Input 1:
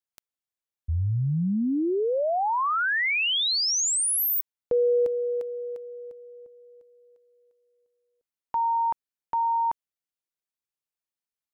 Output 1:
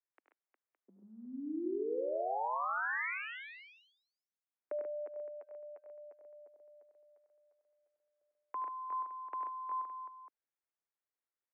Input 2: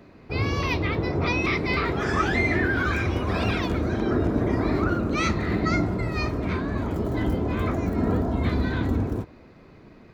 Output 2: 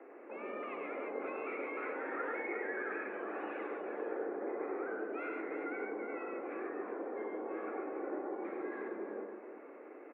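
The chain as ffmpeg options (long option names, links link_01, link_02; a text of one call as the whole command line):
ffmpeg -i in.wav -af "acompressor=threshold=-39dB:ratio=2.5:attack=1.5:release=268:knee=6:detection=peak,aecho=1:1:76|98|127|136|360|565:0.237|0.562|0.178|0.473|0.376|0.178,highpass=frequency=180:width_type=q:width=0.5412,highpass=frequency=180:width_type=q:width=1.307,lowpass=frequency=2100:width_type=q:width=0.5176,lowpass=frequency=2100:width_type=q:width=0.7071,lowpass=frequency=2100:width_type=q:width=1.932,afreqshift=110,volume=-3dB" out.wav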